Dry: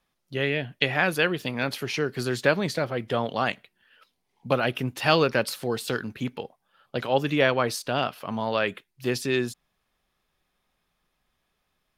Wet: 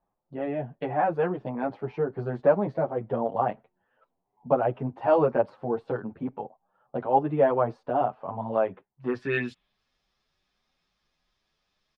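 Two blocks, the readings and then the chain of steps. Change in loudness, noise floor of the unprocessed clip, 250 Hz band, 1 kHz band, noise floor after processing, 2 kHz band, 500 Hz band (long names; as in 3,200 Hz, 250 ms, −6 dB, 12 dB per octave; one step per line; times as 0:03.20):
−1.5 dB, −77 dBFS, −2.0 dB, +2.0 dB, −80 dBFS, −11.0 dB, +1.0 dB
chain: tape wow and flutter 15 cents
low-pass filter sweep 820 Hz → 5,200 Hz, 0:08.94–0:09.82
barber-pole flanger 8.3 ms +2.4 Hz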